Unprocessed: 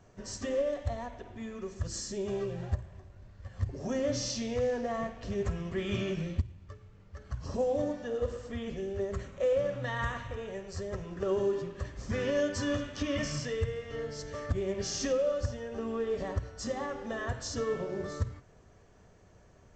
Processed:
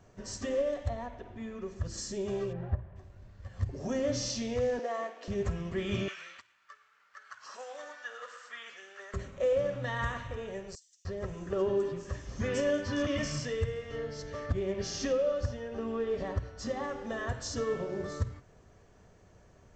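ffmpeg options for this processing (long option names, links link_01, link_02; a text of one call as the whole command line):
ffmpeg -i in.wav -filter_complex "[0:a]asettb=1/sr,asplit=3[link_01][link_02][link_03];[link_01]atrim=end=0.894[link_04];[link_02]atrim=start=0.89:end=1.98,asetpts=PTS-STARTPTS,afade=type=in:duration=0.004:curve=qsin,afade=type=out:start_time=1.086:duration=0.004:curve=qsin,lowpass=frequency=3500:poles=1[link_05];[link_03]atrim=start=1.976[link_06];[link_04][link_05]acrossfade=duration=0.004:curve1=hsin:curve2=qsin[link_07];[link_07][link_06]acrossfade=duration=0.004:curve1=qsin:curve2=hsin,asplit=3[link_08][link_09][link_10];[link_08]afade=type=out:start_time=2.52:duration=0.02[link_11];[link_09]lowpass=1800,afade=type=in:start_time=2.52:duration=0.02,afade=type=out:start_time=2.95:duration=0.02[link_12];[link_10]afade=type=in:start_time=2.95:duration=0.02[link_13];[link_11][link_12][link_13]amix=inputs=3:normalize=0,asettb=1/sr,asplit=3[link_14][link_15][link_16];[link_14]atrim=end=4.794[link_17];[link_15]atrim=start=4.79:end=5.28,asetpts=PTS-STARTPTS,afade=type=in:duration=0.004:curve=qsin,afade=type=out:start_time=0.486:duration=0.004:curve=qsin,highpass=frequency=330:width=0.5412,highpass=frequency=330:width=1.3066[link_18];[link_16]atrim=start=5.276[link_19];[link_17][link_18]acrossfade=duration=0.004:curve1=hsin:curve2=qsin[link_20];[link_20][link_19]acrossfade=duration=0.004:curve1=qsin:curve2=hsin,asettb=1/sr,asplit=3[link_21][link_22][link_23];[link_21]atrim=end=6.084[link_24];[link_22]atrim=start=6.08:end=9.14,asetpts=PTS-STARTPTS,afade=type=in:duration=0.004:curve=qsin,afade=type=out:start_time=3.056:duration=0.004:curve=qsin,highpass=frequency=1400:width_type=q:width=2.8[link_25];[link_23]atrim=start=9.136[link_26];[link_24][link_25]acrossfade=duration=0.004:curve1=hsin:curve2=qsin[link_27];[link_27][link_26]acrossfade=duration=0.004:curve1=qsin:curve2=hsin,asettb=1/sr,asplit=3[link_28][link_29][link_30];[link_28]atrim=end=10.754[link_31];[link_29]atrim=start=10.75:end=13.07,asetpts=PTS-STARTPTS,afade=type=in:duration=0.004:curve=qsin,afade=type=out:start_time=2.316:duration=0.004:curve=qsin,acrossover=split=5100[link_32][link_33];[link_32]adelay=300[link_34];[link_34][link_33]amix=inputs=2:normalize=0,atrim=end_sample=102312[link_35];[link_30]atrim=start=13.066[link_36];[link_31][link_35]acrossfade=duration=0.004:curve1=hsin:curve2=qsin[link_37];[link_37][link_36]acrossfade=duration=0.004:curve1=qsin:curve2=hsin,asettb=1/sr,asplit=3[link_38][link_39][link_40];[link_38]atrim=end=13.984[link_41];[link_39]atrim=start=13.98:end=16.84,asetpts=PTS-STARTPTS,afade=type=in:duration=0.004:curve=qsin,afade=type=out:start_time=2.856:duration=0.004:curve=qsin,lowpass=5700[link_42];[link_40]atrim=start=16.836[link_43];[link_41][link_42]acrossfade=duration=0.004:curve1=hsin:curve2=qsin[link_44];[link_44][link_43]acrossfade=duration=0.004:curve1=qsin:curve2=hsin" out.wav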